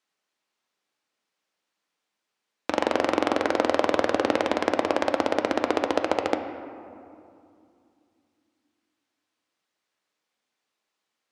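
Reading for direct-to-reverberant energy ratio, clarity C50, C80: 5.5 dB, 8.0 dB, 9.0 dB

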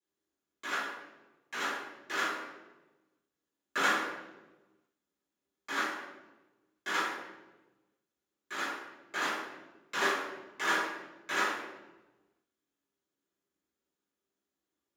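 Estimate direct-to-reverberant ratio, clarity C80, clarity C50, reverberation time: −14.5 dB, 4.0 dB, 1.0 dB, 1.2 s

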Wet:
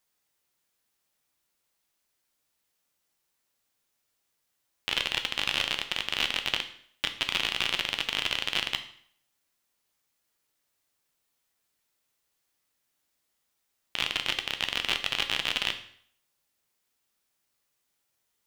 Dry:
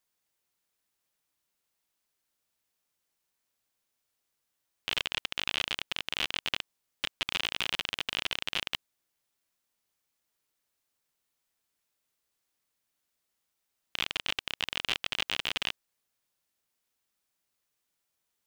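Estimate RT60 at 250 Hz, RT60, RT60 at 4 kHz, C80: 0.55 s, 0.60 s, 0.55 s, 15.0 dB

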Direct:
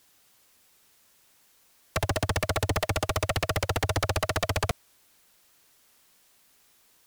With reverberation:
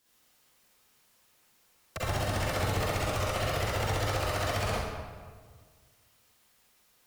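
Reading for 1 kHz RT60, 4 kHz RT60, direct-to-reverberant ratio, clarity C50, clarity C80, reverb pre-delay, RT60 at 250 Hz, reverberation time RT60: 1.6 s, 1.0 s, −8.5 dB, −5.0 dB, −0.5 dB, 39 ms, 1.8 s, 1.6 s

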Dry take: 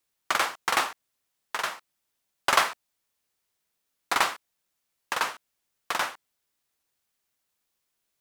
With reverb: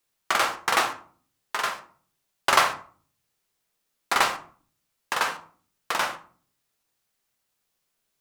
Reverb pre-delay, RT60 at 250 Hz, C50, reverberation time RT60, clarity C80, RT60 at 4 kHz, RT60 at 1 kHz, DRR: 5 ms, 0.70 s, 13.0 dB, 0.45 s, 17.0 dB, 0.25 s, 0.45 s, 5.0 dB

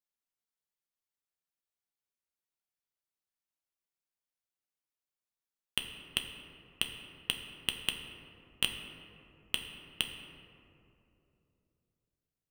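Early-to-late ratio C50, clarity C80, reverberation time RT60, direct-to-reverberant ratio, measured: 6.5 dB, 7.5 dB, 3.0 s, 3.5 dB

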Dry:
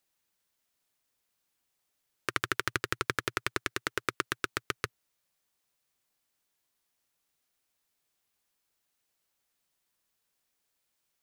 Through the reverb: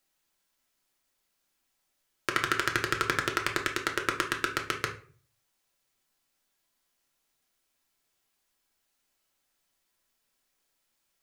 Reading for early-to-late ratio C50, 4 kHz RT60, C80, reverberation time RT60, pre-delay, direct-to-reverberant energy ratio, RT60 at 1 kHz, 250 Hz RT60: 10.0 dB, 0.30 s, 16.0 dB, 0.45 s, 3 ms, 1.5 dB, 0.40 s, 0.55 s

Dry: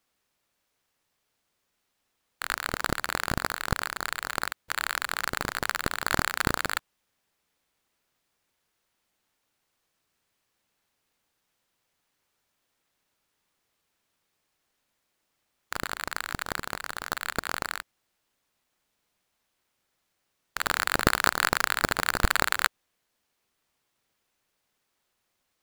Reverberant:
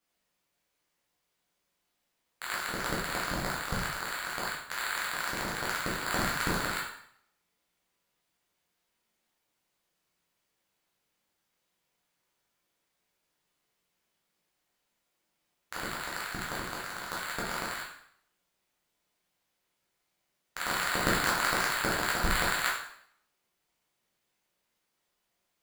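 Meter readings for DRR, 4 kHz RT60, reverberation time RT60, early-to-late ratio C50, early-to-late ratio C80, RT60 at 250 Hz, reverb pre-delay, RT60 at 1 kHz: −5.5 dB, 0.60 s, 0.65 s, 3.0 dB, 7.0 dB, 0.65 s, 5 ms, 0.65 s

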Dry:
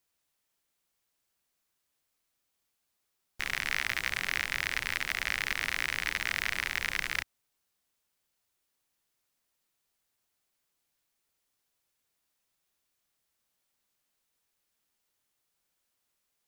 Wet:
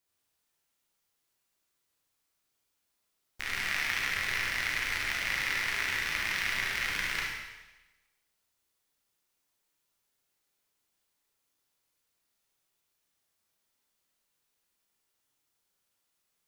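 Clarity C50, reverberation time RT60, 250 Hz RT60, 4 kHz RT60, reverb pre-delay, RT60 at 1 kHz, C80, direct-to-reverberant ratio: −0.5 dB, 1.1 s, 1.0 s, 1.1 s, 32 ms, 1.1 s, 2.5 dB, −3.5 dB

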